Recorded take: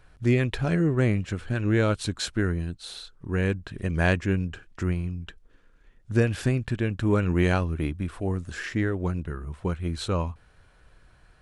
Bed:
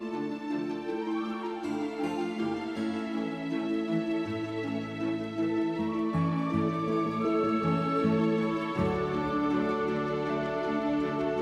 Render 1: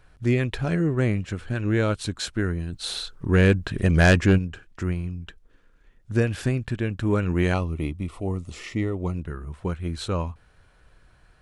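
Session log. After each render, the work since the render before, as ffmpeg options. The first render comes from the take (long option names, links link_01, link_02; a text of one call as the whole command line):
ffmpeg -i in.wav -filter_complex "[0:a]asplit=3[link_01][link_02][link_03];[link_01]afade=type=out:start_time=2.72:duration=0.02[link_04];[link_02]aeval=exprs='0.335*sin(PI/2*1.78*val(0)/0.335)':channel_layout=same,afade=type=in:start_time=2.72:duration=0.02,afade=type=out:start_time=4.37:duration=0.02[link_05];[link_03]afade=type=in:start_time=4.37:duration=0.02[link_06];[link_04][link_05][link_06]amix=inputs=3:normalize=0,asettb=1/sr,asplit=3[link_07][link_08][link_09];[link_07]atrim=end=7.544[link_10];[link_08]atrim=start=7.54:end=9.14,asetpts=PTS-STARTPTS,afade=type=in:duration=0.004:curve=qsin,afade=type=out:start_time=1.596:duration=0.004:curve=qsin,asuperstop=centerf=1600:order=4:qfactor=2.7[link_11];[link_09]atrim=start=9.136[link_12];[link_10][link_11]acrossfade=duration=0.004:curve1=hsin:curve2=qsin[link_13];[link_13][link_12]acrossfade=duration=0.004:curve1=qsin:curve2=hsin" out.wav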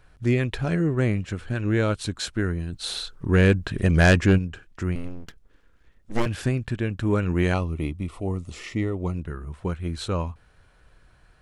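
ffmpeg -i in.wav -filter_complex "[0:a]asettb=1/sr,asplit=3[link_01][link_02][link_03];[link_01]atrim=end=4.954[link_04];[link_02]atrim=start=4.95:end=6.26,asetpts=PTS-STARTPTS,afade=type=in:duration=0.004:curve=qsin,afade=type=out:start_time=1.306:duration=0.004:curve=qsin,aeval=exprs='abs(val(0))':channel_layout=same[link_05];[link_03]atrim=start=6.256[link_06];[link_04][link_05]acrossfade=duration=0.004:curve1=hsin:curve2=qsin[link_07];[link_07][link_06]acrossfade=duration=0.004:curve1=qsin:curve2=hsin" out.wav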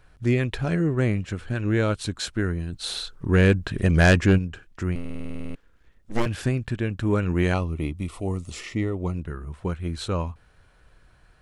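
ffmpeg -i in.wav -filter_complex "[0:a]asettb=1/sr,asplit=3[link_01][link_02][link_03];[link_01]atrim=end=7.974[link_04];[link_02]atrim=start=7.97:end=8.61,asetpts=PTS-STARTPTS,afade=type=in:duration=0.004:curve=qsin,afade=type=out:start_time=0.636:duration=0.004:curve=qsin,highshelf=frequency=3200:gain=7.5[link_05];[link_03]atrim=start=8.606[link_06];[link_04][link_05]acrossfade=duration=0.004:curve1=hsin:curve2=qsin[link_07];[link_07][link_06]acrossfade=duration=0.004:curve1=qsin:curve2=hsin,asplit=12[link_08][link_09][link_10][link_11][link_12][link_13][link_14][link_15][link_16][link_17][link_18][link_19];[link_08]atrim=end=5.052[link_20];[link_09]atrim=start=4.998:end=5.052[link_21];[link_10]atrim=start=4.998:end=5.052[link_22];[link_11]atrim=start=4.998:end=5.052[link_23];[link_12]atrim=start=4.998:end=5.052[link_24];[link_13]atrim=start=4.998:end=5.052[link_25];[link_14]atrim=start=4.998:end=5.052[link_26];[link_15]atrim=start=4.998:end=5.052[link_27];[link_16]atrim=start=4.998:end=5.052[link_28];[link_17]atrim=start=4.998:end=5.052[link_29];[link_18]atrim=start=4.998:end=5.052[link_30];[link_19]atrim=start=5.548[link_31];[link_20][link_21]acrossfade=duration=0.004:curve1=hsin:curve2=hsin[link_32];[link_32][link_22]acrossfade=duration=0.004:curve1=hsin:curve2=hsin[link_33];[link_33][link_23]acrossfade=duration=0.004:curve1=hsin:curve2=hsin[link_34];[link_34][link_24]acrossfade=duration=0.004:curve1=hsin:curve2=hsin[link_35];[link_35][link_25]acrossfade=duration=0.004:curve1=hsin:curve2=hsin[link_36];[link_36][link_26]acrossfade=duration=0.004:curve1=hsin:curve2=hsin[link_37];[link_37][link_27]acrossfade=duration=0.004:curve1=hsin:curve2=hsin[link_38];[link_38][link_28]acrossfade=duration=0.004:curve1=hsin:curve2=hsin[link_39];[link_39][link_29]acrossfade=duration=0.004:curve1=hsin:curve2=hsin[link_40];[link_40][link_30]acrossfade=duration=0.004:curve1=hsin:curve2=hsin[link_41];[link_41][link_31]acrossfade=duration=0.004:curve1=hsin:curve2=hsin" out.wav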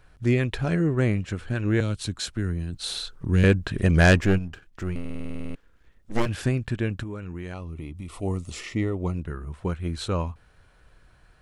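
ffmpeg -i in.wav -filter_complex "[0:a]asettb=1/sr,asplit=3[link_01][link_02][link_03];[link_01]atrim=end=1.804[link_04];[link_02]atrim=start=1.8:end=3.44,asetpts=PTS-STARTPTS,afade=type=in:duration=0.004:curve=qsin,afade=type=out:start_time=1.636:duration=0.004:curve=qsin,acrossover=split=260|3000[link_05][link_06][link_07];[link_06]acompressor=threshold=-42dB:ratio=2:attack=3.2:release=140:knee=2.83:detection=peak[link_08];[link_05][link_08][link_07]amix=inputs=3:normalize=0[link_09];[link_03]atrim=start=3.436[link_10];[link_04][link_09]acrossfade=duration=0.004:curve1=hsin:curve2=qsin[link_11];[link_11][link_10]acrossfade=duration=0.004:curve1=qsin:curve2=hsin,asettb=1/sr,asplit=3[link_12][link_13][link_14];[link_12]atrim=end=4.174[link_15];[link_13]atrim=start=4.17:end=6.29,asetpts=PTS-STARTPTS,afade=type=in:duration=0.004:curve=qsin,afade=type=out:start_time=2.116:duration=0.004:curve=qsin,aeval=exprs='if(lt(val(0),0),0.447*val(0),val(0))':channel_layout=same[link_16];[link_14]atrim=start=6.286[link_17];[link_15][link_16]acrossfade=duration=0.004:curve1=hsin:curve2=qsin[link_18];[link_18][link_17]acrossfade=duration=0.004:curve1=qsin:curve2=hsin,asplit=3[link_19][link_20][link_21];[link_19]afade=type=out:start_time=7.02:duration=0.02[link_22];[link_20]acompressor=threshold=-32dB:ratio=5:attack=3.2:release=140:knee=1:detection=peak,afade=type=in:start_time=7.02:duration=0.02,afade=type=out:start_time=8.21:duration=0.02[link_23];[link_21]afade=type=in:start_time=8.21:duration=0.02[link_24];[link_22][link_23][link_24]amix=inputs=3:normalize=0" out.wav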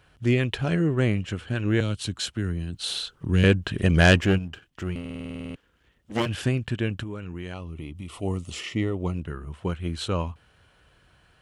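ffmpeg -i in.wav -af "highpass=65,equalizer=frequency=3000:width=4.4:gain=8.5" out.wav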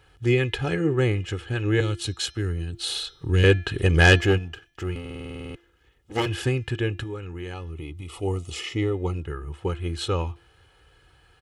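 ffmpeg -i in.wav -af "aecho=1:1:2.4:0.69,bandreject=frequency=343.4:width_type=h:width=4,bandreject=frequency=686.8:width_type=h:width=4,bandreject=frequency=1030.2:width_type=h:width=4,bandreject=frequency=1373.6:width_type=h:width=4,bandreject=frequency=1717:width_type=h:width=4,bandreject=frequency=2060.4:width_type=h:width=4,bandreject=frequency=2403.8:width_type=h:width=4,bandreject=frequency=2747.2:width_type=h:width=4,bandreject=frequency=3090.6:width_type=h:width=4,bandreject=frequency=3434:width_type=h:width=4,bandreject=frequency=3777.4:width_type=h:width=4,bandreject=frequency=4120.8:width_type=h:width=4,bandreject=frequency=4464.2:width_type=h:width=4,bandreject=frequency=4807.6:width_type=h:width=4,bandreject=frequency=5151:width_type=h:width=4,bandreject=frequency=5494.4:width_type=h:width=4,bandreject=frequency=5837.8:width_type=h:width=4,bandreject=frequency=6181.2:width_type=h:width=4" out.wav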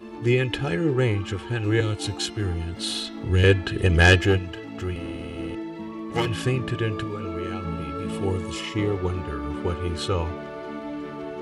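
ffmpeg -i in.wav -i bed.wav -filter_complex "[1:a]volume=-4.5dB[link_01];[0:a][link_01]amix=inputs=2:normalize=0" out.wav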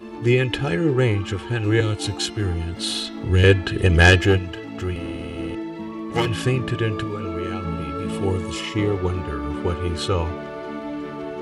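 ffmpeg -i in.wav -af "volume=3dB,alimiter=limit=-1dB:level=0:latency=1" out.wav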